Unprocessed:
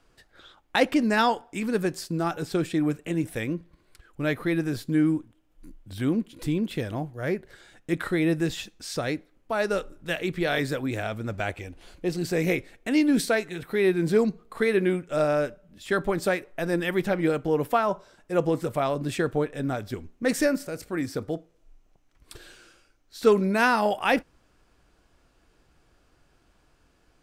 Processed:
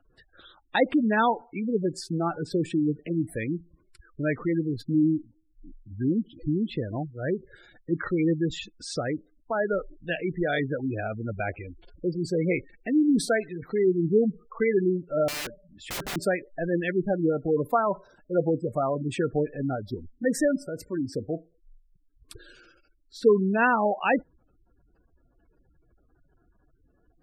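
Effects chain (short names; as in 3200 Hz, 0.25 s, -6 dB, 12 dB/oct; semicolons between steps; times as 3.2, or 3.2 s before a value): spectral gate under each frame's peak -15 dB strong; 15.28–16.16 wrapped overs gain 28 dB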